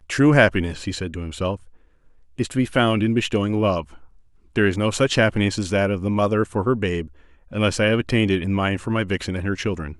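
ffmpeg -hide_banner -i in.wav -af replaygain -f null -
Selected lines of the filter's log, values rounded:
track_gain = +1.6 dB
track_peak = 0.580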